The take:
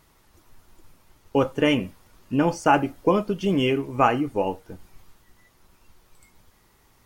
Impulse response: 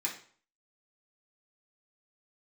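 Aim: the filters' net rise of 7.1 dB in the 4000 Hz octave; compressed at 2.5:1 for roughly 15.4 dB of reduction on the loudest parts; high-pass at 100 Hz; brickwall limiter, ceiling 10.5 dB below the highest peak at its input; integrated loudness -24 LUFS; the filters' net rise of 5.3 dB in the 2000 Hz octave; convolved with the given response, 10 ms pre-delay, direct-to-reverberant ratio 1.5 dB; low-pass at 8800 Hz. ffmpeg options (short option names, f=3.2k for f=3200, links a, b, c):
-filter_complex "[0:a]highpass=100,lowpass=8.8k,equalizer=f=2k:t=o:g=4.5,equalizer=f=4k:t=o:g=9,acompressor=threshold=-37dB:ratio=2.5,alimiter=level_in=4.5dB:limit=-24dB:level=0:latency=1,volume=-4.5dB,asplit=2[a][b];[1:a]atrim=start_sample=2205,adelay=10[c];[b][c]afir=irnorm=-1:irlink=0,volume=-5.5dB[d];[a][d]amix=inputs=2:normalize=0,volume=15dB"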